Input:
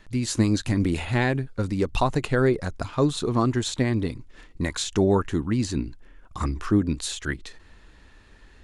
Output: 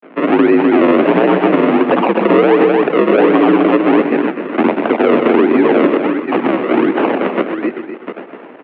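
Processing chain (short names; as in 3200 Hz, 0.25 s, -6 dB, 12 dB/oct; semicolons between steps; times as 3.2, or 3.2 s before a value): reverse delay 0.452 s, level -13 dB; doubler 22 ms -13 dB; in parallel at -3 dB: compressor, threshold -34 dBFS, peak gain reduction 17.5 dB; on the sum: grains 0.1 s, grains 20/s; decimation with a swept rate 40×, swing 100% 1.4 Hz; dynamic EQ 1600 Hz, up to -5 dB, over -37 dBFS, Q 0.85; loudspeakers at several distances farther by 43 m -11 dB, 86 m -9 dB; mistuned SSB +55 Hz 190–2600 Hz; maximiser +19 dB; gain -1 dB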